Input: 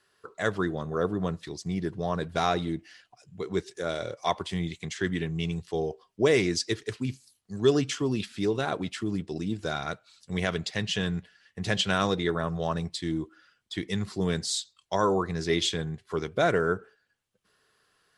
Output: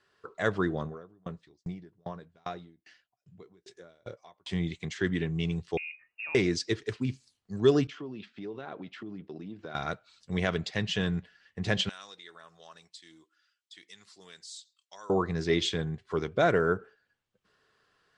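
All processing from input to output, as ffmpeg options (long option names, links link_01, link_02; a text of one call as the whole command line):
ffmpeg -i in.wav -filter_complex "[0:a]asettb=1/sr,asplit=3[link_01][link_02][link_03];[link_01]atrim=end=0.864[link_04];[link_02]atrim=start=0.86:end=4.48,asetpts=PTS-STARTPTS,afade=type=in:duration=0.004:curve=qsin,afade=type=out:start_time=3.616:duration=0.004:curve=qsin,acompressor=threshold=-31dB:ratio=2.5:attack=3.2:release=140:knee=1:detection=peak,asplit=2[link_05][link_06];[link_06]adelay=17,volume=-12dB[link_07];[link_05][link_07]amix=inputs=2:normalize=0,atrim=end_sample=159642,aeval=exprs='val(0)*pow(10,-36*if(lt(mod(2.5*n/s,1),2*abs(2.5)/1000),1-mod(2.5*n/s,1)/(2*abs(2.5)/1000),(mod(2.5*n/s,1)-2*abs(2.5)/1000)/(1-2*abs(2.5)/1000))/20)':channel_layout=same[link_08];[link_03]atrim=start=4.476[link_09];[link_04][link_08]acrossfade=duration=0.004:curve1=hsin:curve2=qsin[link_10];[link_10][link_09]acrossfade=duration=0.004:curve1=qsin:curve2=hsin,asettb=1/sr,asplit=3[link_11][link_12][link_13];[link_11]atrim=end=5.774[link_14];[link_12]atrim=start=5.77:end=6.35,asetpts=PTS-STARTPTS,afade=type=in:duration=0.004:curve=qsin,afade=type=out:start_time=0.576:duration=0.004:curve=qsin,acompressor=threshold=-33dB:ratio=12:attack=3.2:release=140:knee=1:detection=peak,lowpass=frequency=2500:width_type=q:width=0.5098,lowpass=frequency=2500:width_type=q:width=0.6013,lowpass=frequency=2500:width_type=q:width=0.9,lowpass=frequency=2500:width_type=q:width=2.563,afreqshift=-2900[link_15];[link_13]atrim=start=6.346[link_16];[link_14][link_15]acrossfade=duration=0.004:curve1=hsin:curve2=qsin[link_17];[link_17][link_16]acrossfade=duration=0.004:curve1=qsin:curve2=hsin,asettb=1/sr,asplit=3[link_18][link_19][link_20];[link_18]atrim=end=7.874[link_21];[link_19]atrim=start=7.87:end=9.75,asetpts=PTS-STARTPTS,afade=type=in:duration=0.004:curve=qsin,afade=type=out:start_time=1.876:duration=0.004:curve=qsin,agate=range=-33dB:threshold=-42dB:ratio=3:release=100:detection=peak,acompressor=threshold=-39dB:ratio=3:attack=3.2:release=140:knee=1:detection=peak,highpass=160,lowpass=3500[link_22];[link_20]atrim=start=9.746[link_23];[link_21][link_22]acrossfade=duration=0.004:curve1=hsin:curve2=qsin[link_24];[link_24][link_23]acrossfade=duration=0.004:curve1=qsin:curve2=hsin,asettb=1/sr,asplit=3[link_25][link_26][link_27];[link_25]atrim=end=11.894[link_28];[link_26]atrim=start=11.89:end=15.1,asetpts=PTS-STARTPTS,afade=type=in:duration=0.004:curve=qsin,afade=type=out:start_time=3.206:duration=0.004:curve=qsin,aderivative,acompressor=threshold=-48dB:ratio=1.5:attack=3.2:release=140:knee=1:detection=peak[link_29];[link_27]atrim=start=15.096[link_30];[link_28][link_29]acrossfade=duration=0.004:curve1=hsin:curve2=qsin[link_31];[link_31][link_30]acrossfade=duration=0.004:curve1=qsin:curve2=hsin,lowpass=frequency=8600:width=0.5412,lowpass=frequency=8600:width=1.3066,highshelf=frequency=5400:gain=-9.5" out.wav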